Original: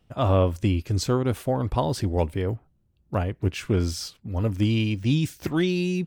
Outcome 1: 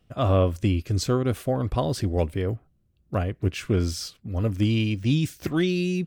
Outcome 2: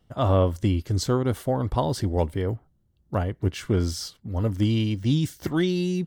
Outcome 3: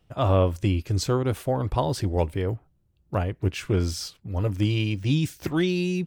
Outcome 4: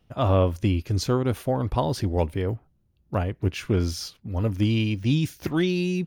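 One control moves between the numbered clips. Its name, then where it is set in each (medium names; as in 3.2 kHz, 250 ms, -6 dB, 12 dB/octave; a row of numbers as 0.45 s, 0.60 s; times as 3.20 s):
band-stop, frequency: 890 Hz, 2.5 kHz, 230 Hz, 7.8 kHz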